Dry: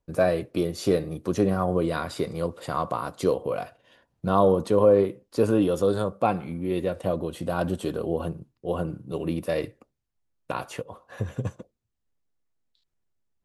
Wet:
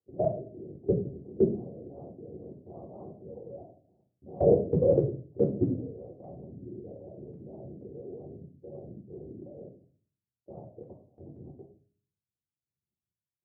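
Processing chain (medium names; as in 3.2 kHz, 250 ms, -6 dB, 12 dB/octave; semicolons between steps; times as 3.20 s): short-time spectra conjugated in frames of 34 ms; LPC vocoder at 8 kHz whisper; elliptic low-pass 660 Hz, stop band 60 dB; level held to a coarse grid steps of 23 dB; high-pass 100 Hz 24 dB/octave; de-hum 204.8 Hz, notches 3; reverberation RT60 0.40 s, pre-delay 3 ms, DRR 0.5 dB; dynamic bell 150 Hz, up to +4 dB, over -41 dBFS, Q 1.2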